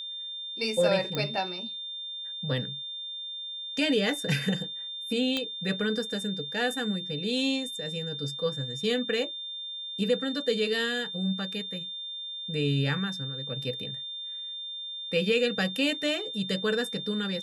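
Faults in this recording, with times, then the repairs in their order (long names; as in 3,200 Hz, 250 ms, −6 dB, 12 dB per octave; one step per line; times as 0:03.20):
whistle 3,600 Hz −35 dBFS
0:01.15: click −16 dBFS
0:05.37: click −15 dBFS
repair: click removal
notch filter 3,600 Hz, Q 30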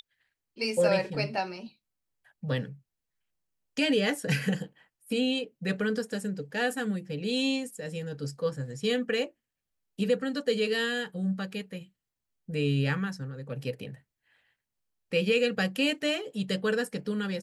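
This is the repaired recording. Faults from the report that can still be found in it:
none of them is left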